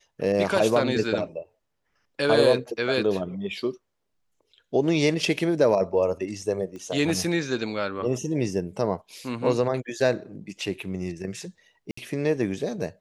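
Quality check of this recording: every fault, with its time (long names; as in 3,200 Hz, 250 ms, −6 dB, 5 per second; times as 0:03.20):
0:06.76: click −28 dBFS
0:11.91–0:11.97: drop-out 64 ms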